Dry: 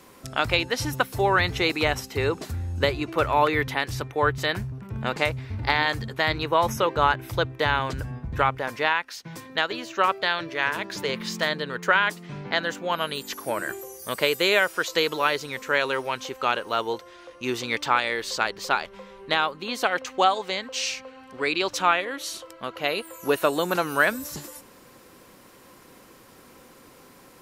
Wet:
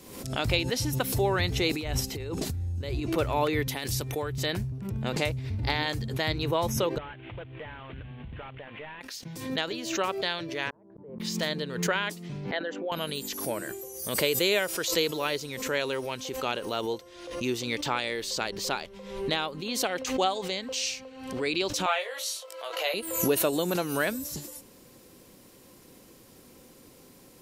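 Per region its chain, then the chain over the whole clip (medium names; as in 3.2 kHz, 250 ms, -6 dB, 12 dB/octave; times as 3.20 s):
1.71–3.15 s: bass shelf 70 Hz +10 dB + compressor with a negative ratio -31 dBFS
3.67–4.36 s: treble shelf 5 kHz +11.5 dB + compression, threshold -22 dBFS
6.98–9.01 s: CVSD coder 16 kbps + tilt shelf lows -5.5 dB, about 750 Hz + compression 2:1, threshold -39 dBFS
10.70–11.20 s: low-pass 1 kHz 24 dB/octave + inverted gate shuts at -30 dBFS, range -37 dB
12.51–12.92 s: resonances exaggerated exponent 1.5 + band-pass 320–3000 Hz
21.86–22.94 s: steep high-pass 500 Hz + doubling 19 ms -3 dB
whole clip: peaking EQ 1.3 kHz -11 dB 1.9 oct; swell ahead of each attack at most 64 dB/s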